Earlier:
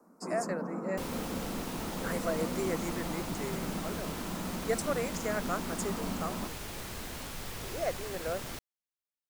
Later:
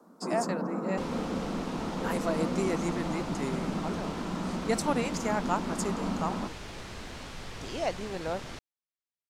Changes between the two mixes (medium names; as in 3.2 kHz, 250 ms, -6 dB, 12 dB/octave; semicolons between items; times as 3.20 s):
speech: remove static phaser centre 900 Hz, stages 6; first sound +4.5 dB; second sound: add low-pass 5.8 kHz 12 dB/octave